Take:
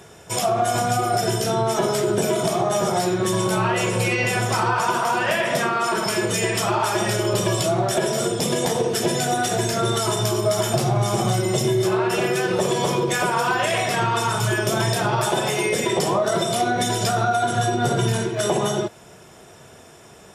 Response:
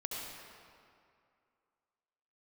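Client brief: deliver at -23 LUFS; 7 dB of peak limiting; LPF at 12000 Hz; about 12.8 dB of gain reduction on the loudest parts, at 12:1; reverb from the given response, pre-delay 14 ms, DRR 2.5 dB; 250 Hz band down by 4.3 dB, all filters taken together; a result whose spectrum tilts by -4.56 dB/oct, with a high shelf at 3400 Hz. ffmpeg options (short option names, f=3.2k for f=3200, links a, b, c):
-filter_complex "[0:a]lowpass=12k,equalizer=f=250:t=o:g=-7.5,highshelf=f=3.4k:g=-8,acompressor=threshold=-31dB:ratio=12,alimiter=level_in=4dB:limit=-24dB:level=0:latency=1,volume=-4dB,asplit=2[a][b];[1:a]atrim=start_sample=2205,adelay=14[c];[b][c]afir=irnorm=-1:irlink=0,volume=-4.5dB[d];[a][d]amix=inputs=2:normalize=0,volume=12dB"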